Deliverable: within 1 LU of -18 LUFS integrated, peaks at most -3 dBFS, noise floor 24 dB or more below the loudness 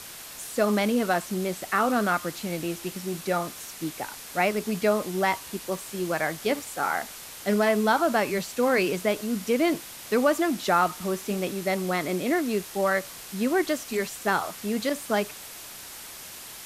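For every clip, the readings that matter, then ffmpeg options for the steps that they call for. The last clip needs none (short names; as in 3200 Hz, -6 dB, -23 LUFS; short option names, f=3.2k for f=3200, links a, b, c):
noise floor -42 dBFS; noise floor target -51 dBFS; loudness -26.5 LUFS; peak -9.0 dBFS; loudness target -18.0 LUFS
-> -af "afftdn=nr=9:nf=-42"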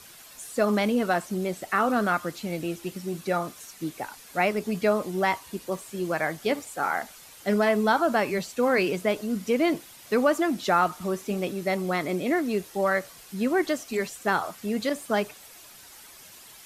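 noise floor -49 dBFS; noise floor target -51 dBFS
-> -af "afftdn=nr=6:nf=-49"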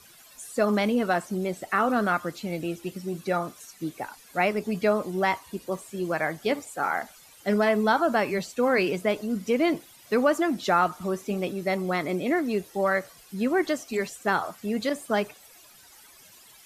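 noise floor -53 dBFS; loudness -27.0 LUFS; peak -9.0 dBFS; loudness target -18.0 LUFS
-> -af "volume=9dB,alimiter=limit=-3dB:level=0:latency=1"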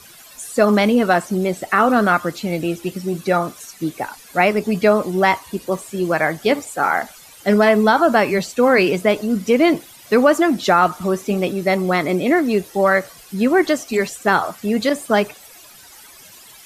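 loudness -18.0 LUFS; peak -3.0 dBFS; noise floor -44 dBFS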